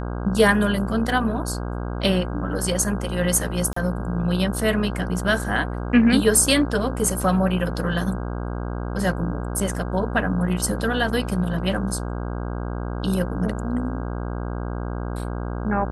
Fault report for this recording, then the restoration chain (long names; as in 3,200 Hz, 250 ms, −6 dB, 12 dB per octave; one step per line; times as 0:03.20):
mains buzz 60 Hz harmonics 27 −28 dBFS
0:03.73–0:03.76: drop-out 34 ms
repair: hum removal 60 Hz, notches 27
repair the gap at 0:03.73, 34 ms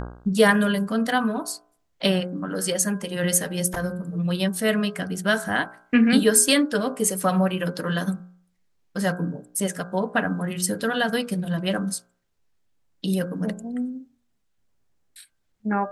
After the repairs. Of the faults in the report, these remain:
none of them is left